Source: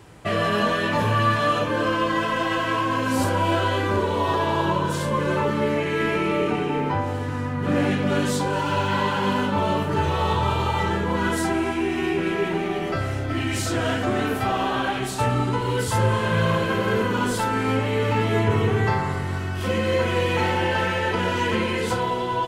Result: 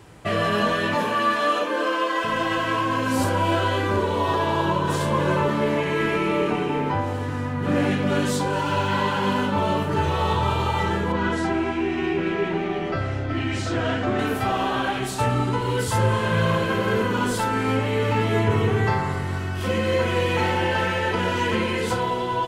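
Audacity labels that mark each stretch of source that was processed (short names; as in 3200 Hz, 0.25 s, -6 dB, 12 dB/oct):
0.940000	2.230000	HPF 180 Hz -> 380 Hz 24 dB/oct
4.270000	4.870000	echo throw 0.6 s, feedback 60%, level -6.5 dB
11.120000	14.190000	air absorption 99 m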